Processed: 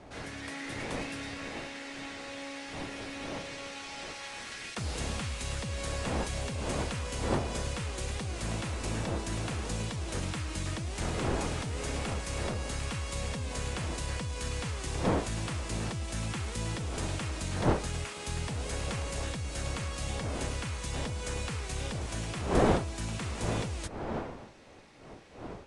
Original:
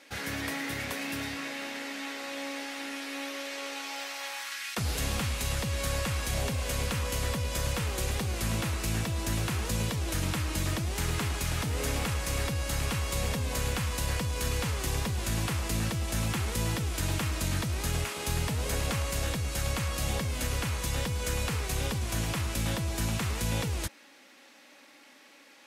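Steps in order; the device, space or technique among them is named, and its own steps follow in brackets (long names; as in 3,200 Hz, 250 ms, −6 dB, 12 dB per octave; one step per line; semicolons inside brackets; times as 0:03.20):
smartphone video outdoors (wind on the microphone 620 Hz −34 dBFS; automatic gain control gain up to 4 dB; level −8.5 dB; AAC 96 kbit/s 22,050 Hz)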